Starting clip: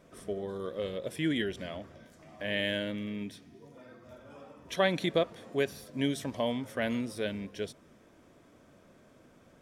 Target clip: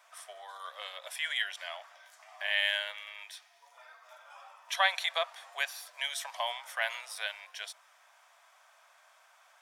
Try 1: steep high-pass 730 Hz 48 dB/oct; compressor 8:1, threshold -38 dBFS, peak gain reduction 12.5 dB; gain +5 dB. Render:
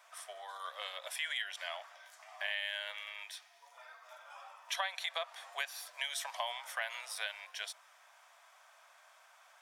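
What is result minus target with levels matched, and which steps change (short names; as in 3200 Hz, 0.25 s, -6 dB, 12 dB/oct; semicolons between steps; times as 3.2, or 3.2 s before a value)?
compressor: peak gain reduction +12.5 dB
remove: compressor 8:1, threshold -38 dBFS, peak gain reduction 12.5 dB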